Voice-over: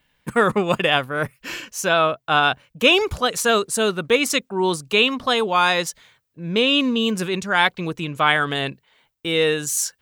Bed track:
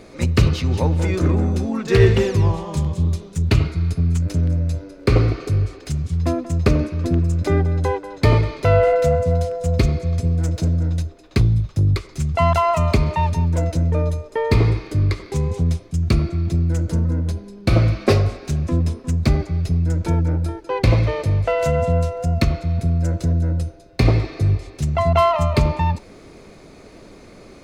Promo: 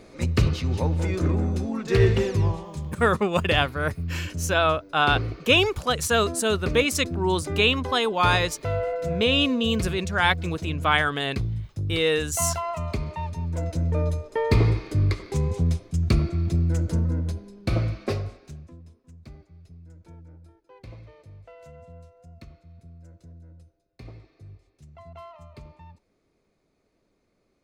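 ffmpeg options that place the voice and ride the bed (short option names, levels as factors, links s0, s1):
-filter_complex "[0:a]adelay=2650,volume=0.668[s0];[1:a]volume=1.41,afade=t=out:st=2.45:d=0.32:silence=0.473151,afade=t=in:st=13.36:d=0.8:silence=0.375837,afade=t=out:st=16.86:d=1.9:silence=0.0595662[s1];[s0][s1]amix=inputs=2:normalize=0"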